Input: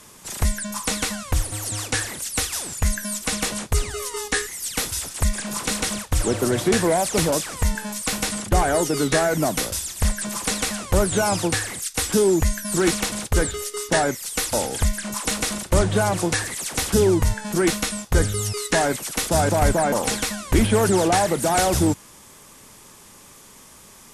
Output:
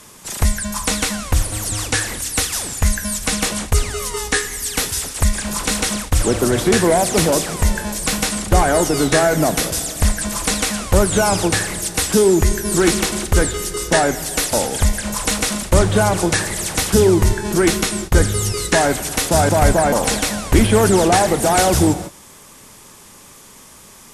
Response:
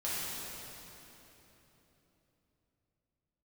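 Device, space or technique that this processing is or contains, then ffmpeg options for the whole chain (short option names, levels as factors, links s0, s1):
keyed gated reverb: -filter_complex "[0:a]asplit=3[s0][s1][s2];[1:a]atrim=start_sample=2205[s3];[s1][s3]afir=irnorm=-1:irlink=0[s4];[s2]apad=whole_len=1064483[s5];[s4][s5]sidechaingate=range=0.0224:threshold=0.0158:ratio=16:detection=peak,volume=0.141[s6];[s0][s6]amix=inputs=2:normalize=0,volume=1.58"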